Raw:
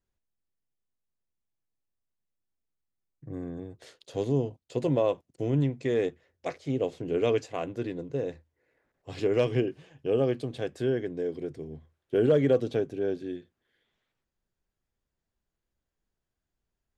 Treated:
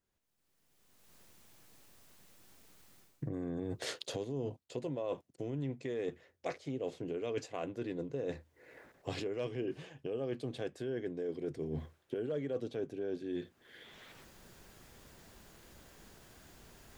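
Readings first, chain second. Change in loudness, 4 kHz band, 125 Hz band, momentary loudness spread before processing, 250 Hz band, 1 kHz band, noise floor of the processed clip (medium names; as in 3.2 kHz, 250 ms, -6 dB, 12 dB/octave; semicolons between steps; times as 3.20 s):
-10.5 dB, -3.5 dB, -11.0 dB, 14 LU, -9.0 dB, -8.5 dB, -77 dBFS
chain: recorder AGC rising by 26 dB/s; bass shelf 72 Hz -11.5 dB; reverse; compression 5:1, threshold -37 dBFS, peak gain reduction 17.5 dB; reverse; trim +1 dB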